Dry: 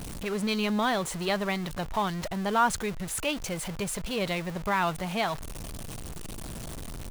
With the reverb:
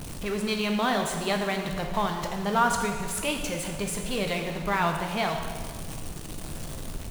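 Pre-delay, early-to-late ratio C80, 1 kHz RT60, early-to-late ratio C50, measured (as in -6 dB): 5 ms, 6.5 dB, 1.8 s, 5.5 dB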